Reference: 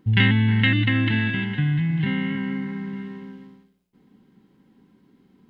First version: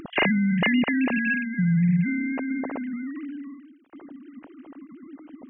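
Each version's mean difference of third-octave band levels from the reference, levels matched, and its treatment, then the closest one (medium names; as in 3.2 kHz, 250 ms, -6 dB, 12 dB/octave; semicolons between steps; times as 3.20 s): 10.5 dB: formants replaced by sine waves; upward compressor, threshold -24 dBFS; dynamic bell 550 Hz, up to +7 dB, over -39 dBFS, Q 0.79; trim -4 dB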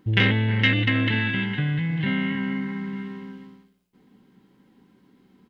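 2.5 dB: bass shelf 370 Hz -4.5 dB; doubling 16 ms -12.5 dB; transformer saturation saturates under 580 Hz; trim +2.5 dB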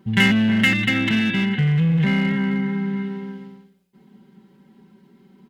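4.5 dB: high-pass 85 Hz 6 dB/octave; comb 5.2 ms, depth 92%; in parallel at -8.5 dB: wavefolder -19.5 dBFS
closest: second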